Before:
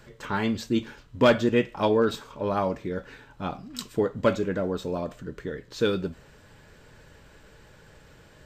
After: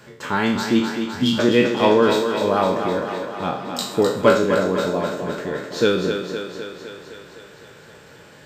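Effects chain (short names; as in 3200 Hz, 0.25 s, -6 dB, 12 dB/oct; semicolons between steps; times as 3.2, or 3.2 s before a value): spectral trails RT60 0.53 s; HPF 130 Hz 12 dB/oct; spectral repair 1.13–1.36, 270–2700 Hz before; thinning echo 0.256 s, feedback 68%, high-pass 180 Hz, level -6.5 dB; gain +5.5 dB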